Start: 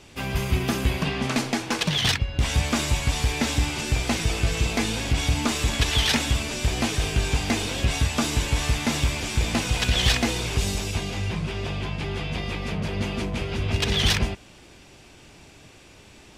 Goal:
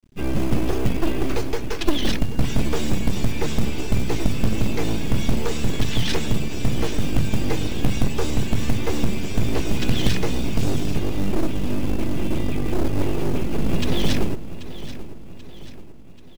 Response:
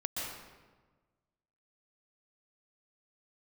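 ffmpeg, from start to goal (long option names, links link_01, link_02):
-filter_complex "[0:a]afftdn=noise_reduction=13:noise_floor=-37,lowshelf=frequency=270:width_type=q:width=3:gain=12.5,acrossover=split=660[link_01][link_02];[link_01]aeval=exprs='abs(val(0))':channel_layout=same[link_03];[link_03][link_02]amix=inputs=2:normalize=0,aeval=exprs='1.58*(cos(1*acos(clip(val(0)/1.58,-1,1)))-cos(1*PI/2))+0.282*(cos(4*acos(clip(val(0)/1.58,-1,1)))-cos(4*PI/2))+0.0224*(cos(5*acos(clip(val(0)/1.58,-1,1)))-cos(5*PI/2))+0.0398*(cos(6*acos(clip(val(0)/1.58,-1,1)))-cos(6*PI/2))':channel_layout=same,aeval=exprs='sgn(val(0))*max(abs(val(0))-0.00501,0)':channel_layout=same,acrusher=bits=6:mode=log:mix=0:aa=0.000001,asplit=2[link_04][link_05];[link_05]aecho=0:1:785|1570|2355|3140|3925:0.2|0.0978|0.0479|0.0235|0.0115[link_06];[link_04][link_06]amix=inputs=2:normalize=0,volume=-4dB"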